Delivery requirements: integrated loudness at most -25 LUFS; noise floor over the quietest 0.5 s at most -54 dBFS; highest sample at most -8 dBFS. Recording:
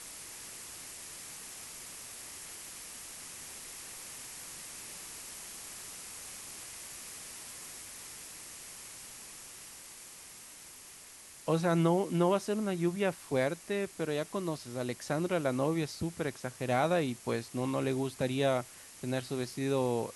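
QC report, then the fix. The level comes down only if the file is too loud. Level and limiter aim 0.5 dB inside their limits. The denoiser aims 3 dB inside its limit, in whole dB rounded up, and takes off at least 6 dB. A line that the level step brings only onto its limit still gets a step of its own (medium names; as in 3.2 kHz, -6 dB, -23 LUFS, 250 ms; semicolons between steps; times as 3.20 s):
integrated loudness -35.0 LUFS: pass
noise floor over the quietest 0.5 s -52 dBFS: fail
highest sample -15.0 dBFS: pass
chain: noise reduction 6 dB, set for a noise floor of -52 dBFS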